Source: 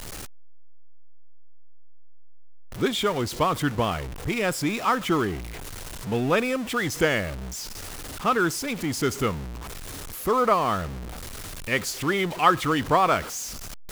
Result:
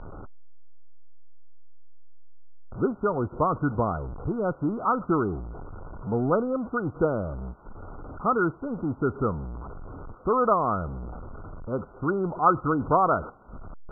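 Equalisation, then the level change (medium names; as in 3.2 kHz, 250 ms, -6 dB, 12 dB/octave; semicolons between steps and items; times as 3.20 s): brick-wall FIR low-pass 1.5 kHz; distance through air 230 m; 0.0 dB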